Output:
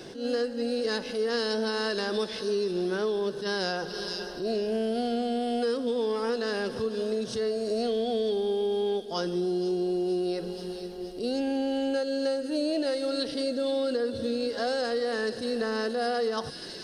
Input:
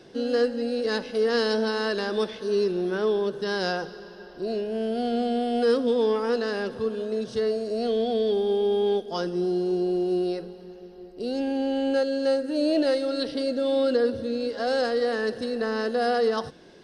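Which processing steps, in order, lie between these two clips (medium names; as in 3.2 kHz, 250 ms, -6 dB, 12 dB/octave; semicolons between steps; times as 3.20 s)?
treble shelf 5.5 kHz +8.5 dB; feedback echo behind a high-pass 473 ms, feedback 53%, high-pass 3.8 kHz, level -10 dB; compression 5:1, threshold -33 dBFS, peak gain reduction 14 dB; attacks held to a fixed rise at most 120 dB/s; trim +6.5 dB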